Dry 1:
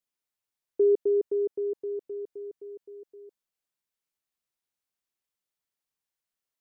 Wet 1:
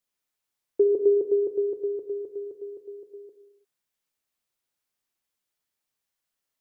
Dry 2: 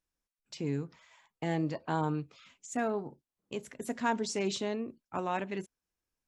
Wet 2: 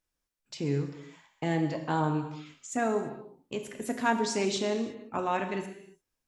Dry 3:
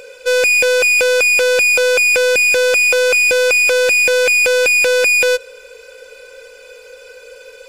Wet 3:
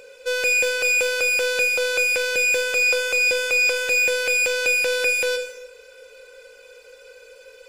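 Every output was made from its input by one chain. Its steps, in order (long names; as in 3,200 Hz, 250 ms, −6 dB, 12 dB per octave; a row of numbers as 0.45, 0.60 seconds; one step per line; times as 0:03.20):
reverb whose tail is shaped and stops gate 370 ms falling, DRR 5.5 dB
normalise the peak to −12 dBFS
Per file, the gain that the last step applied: +4.0, +3.0, −9.0 decibels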